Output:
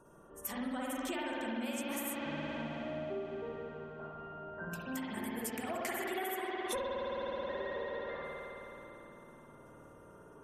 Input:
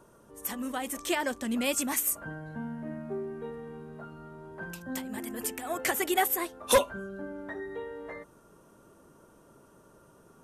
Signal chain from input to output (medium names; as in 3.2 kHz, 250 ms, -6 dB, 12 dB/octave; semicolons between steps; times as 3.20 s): spectral gate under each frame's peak -30 dB strong; spring tank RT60 3.5 s, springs 53 ms, chirp 20 ms, DRR -6 dB; compression 10:1, threshold -30 dBFS, peak gain reduction 15.5 dB; trim -4.5 dB